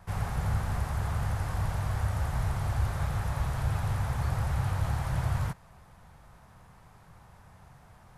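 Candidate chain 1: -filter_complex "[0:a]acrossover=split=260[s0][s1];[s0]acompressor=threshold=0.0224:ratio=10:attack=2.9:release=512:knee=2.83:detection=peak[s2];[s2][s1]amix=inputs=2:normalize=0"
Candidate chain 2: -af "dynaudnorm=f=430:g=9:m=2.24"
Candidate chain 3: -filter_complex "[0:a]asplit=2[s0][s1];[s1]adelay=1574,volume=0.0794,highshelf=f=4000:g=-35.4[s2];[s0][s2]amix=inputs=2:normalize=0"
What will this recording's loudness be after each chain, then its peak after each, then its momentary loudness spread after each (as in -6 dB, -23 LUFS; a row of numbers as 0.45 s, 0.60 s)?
-37.0 LUFS, -25.5 LUFS, -31.5 LUFS; -23.0 dBFS, -11.0 dBFS, -17.5 dBFS; 19 LU, 8 LU, 21 LU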